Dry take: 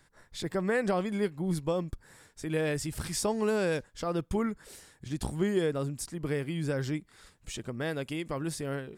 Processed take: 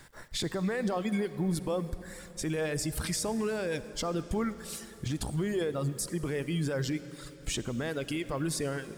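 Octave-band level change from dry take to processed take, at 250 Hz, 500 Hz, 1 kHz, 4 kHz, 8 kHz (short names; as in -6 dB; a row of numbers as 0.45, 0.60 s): 0.0, -2.0, -1.5, +3.5, +3.5 dB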